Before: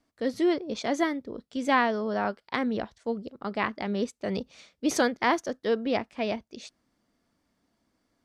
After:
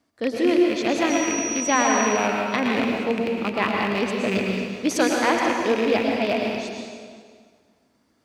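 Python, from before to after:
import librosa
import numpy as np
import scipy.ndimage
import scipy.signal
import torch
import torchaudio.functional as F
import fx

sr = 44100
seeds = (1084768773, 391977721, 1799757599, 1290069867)

p1 = fx.rattle_buzz(x, sr, strikes_db=-38.0, level_db=-21.0)
p2 = scipy.signal.sosfilt(scipy.signal.butter(2, 73.0, 'highpass', fs=sr, output='sos'), p1)
p3 = fx.rider(p2, sr, range_db=10, speed_s=0.5)
p4 = p2 + (p3 * 10.0 ** (-1.0 / 20.0))
p5 = fx.dmg_tone(p4, sr, hz=5800.0, level_db=-29.0, at=(1.09, 2.05), fade=0.02)
p6 = p5 + fx.echo_single(p5, sr, ms=533, db=-23.0, dry=0)
p7 = fx.rev_plate(p6, sr, seeds[0], rt60_s=1.8, hf_ratio=0.8, predelay_ms=95, drr_db=-0.5)
y = p7 * 10.0 ** (-2.5 / 20.0)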